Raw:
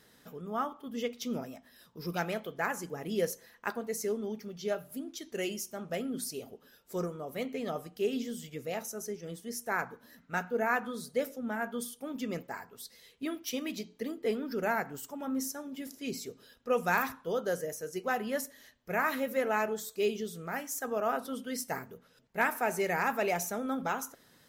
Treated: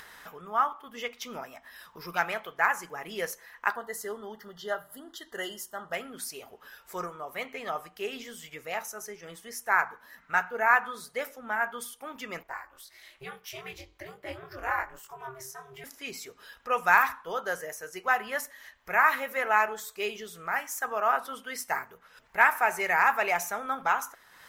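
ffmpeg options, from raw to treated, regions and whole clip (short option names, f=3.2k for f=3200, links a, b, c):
-filter_complex "[0:a]asettb=1/sr,asplit=3[a][b][c];[a]atrim=end=3.764[d];[b]atrim=start=3.76:end=5.93,asetpts=PTS-STARTPTS,afade=t=in:d=0.004:c=qsin,afade=t=out:st=2.166:d=0.004:c=qsin,asuperstop=centerf=2400:order=20:qfactor=3,equalizer=f=5.9k:t=o:w=0.28:g=-8.5[e];[c]atrim=start=5.926[f];[d][e]acrossfade=d=0.004:c1=hsin:c2=qsin[g];[g][f]acrossfade=d=0.004:c1=qsin:c2=hsin,asettb=1/sr,asplit=3[h][i][j];[h]atrim=end=12.434[k];[i]atrim=start=12.43:end=15.84,asetpts=PTS-STARTPTS,afade=t=in:d=0.004:c=qsin,afade=t=out:st=3.406:d=0.004:c=qsin,flanger=delay=19:depth=3.9:speed=1.1,aeval=exprs='val(0)*sin(2*PI*130*n/s)':c=same[l];[j]atrim=start=15.836[m];[k][l]acrossfade=d=0.004:c1=hsin:c2=qsin[n];[n][m]acrossfade=d=0.004:c1=qsin:c2=hsin,equalizer=f=125:t=o:w=1:g=-11,equalizer=f=250:t=o:w=1:g=-12,equalizer=f=500:t=o:w=1:g=-7,equalizer=f=1k:t=o:w=1:g=6,equalizer=f=2k:t=o:w=1:g=4,equalizer=f=4k:t=o:w=1:g=-3,acompressor=mode=upward:threshold=-45dB:ratio=2.5,bass=f=250:g=-2,treble=f=4k:g=-4,volume=5dB"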